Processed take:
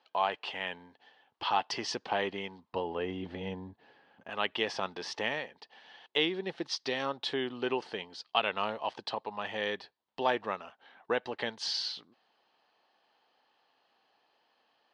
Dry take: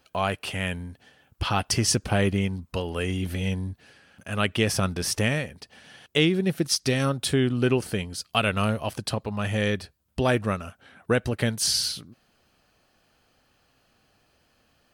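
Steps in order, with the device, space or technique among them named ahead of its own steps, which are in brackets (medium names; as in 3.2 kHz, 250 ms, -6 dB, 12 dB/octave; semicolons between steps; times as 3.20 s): phone earpiece (cabinet simulation 500–4200 Hz, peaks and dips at 590 Hz -4 dB, 890 Hz +7 dB, 1.4 kHz -7 dB, 2.4 kHz -6 dB); 2.73–4.30 s: tilt EQ -3.5 dB/octave; trim -2.5 dB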